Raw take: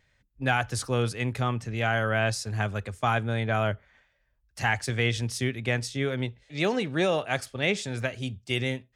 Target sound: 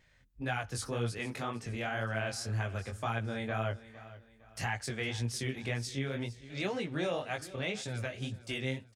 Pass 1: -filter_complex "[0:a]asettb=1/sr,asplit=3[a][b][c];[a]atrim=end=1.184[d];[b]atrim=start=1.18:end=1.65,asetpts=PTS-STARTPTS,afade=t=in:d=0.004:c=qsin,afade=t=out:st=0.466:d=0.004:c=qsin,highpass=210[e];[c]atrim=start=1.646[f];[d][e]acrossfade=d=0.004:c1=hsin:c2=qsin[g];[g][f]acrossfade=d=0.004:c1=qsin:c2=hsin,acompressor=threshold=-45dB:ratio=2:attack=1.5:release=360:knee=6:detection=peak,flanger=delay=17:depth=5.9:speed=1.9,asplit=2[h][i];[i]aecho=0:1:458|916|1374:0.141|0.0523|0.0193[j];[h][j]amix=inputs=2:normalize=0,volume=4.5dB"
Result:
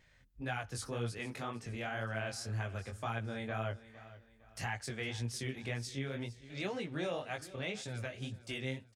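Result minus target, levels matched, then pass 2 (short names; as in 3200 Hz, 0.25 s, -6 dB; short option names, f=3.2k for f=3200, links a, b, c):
compressor: peak gain reduction +4 dB
-filter_complex "[0:a]asettb=1/sr,asplit=3[a][b][c];[a]atrim=end=1.184[d];[b]atrim=start=1.18:end=1.65,asetpts=PTS-STARTPTS,afade=t=in:d=0.004:c=qsin,afade=t=out:st=0.466:d=0.004:c=qsin,highpass=210[e];[c]atrim=start=1.646[f];[d][e]acrossfade=d=0.004:c1=hsin:c2=qsin[g];[g][f]acrossfade=d=0.004:c1=qsin:c2=hsin,acompressor=threshold=-37.5dB:ratio=2:attack=1.5:release=360:knee=6:detection=peak,flanger=delay=17:depth=5.9:speed=1.9,asplit=2[h][i];[i]aecho=0:1:458|916|1374:0.141|0.0523|0.0193[j];[h][j]amix=inputs=2:normalize=0,volume=4.5dB"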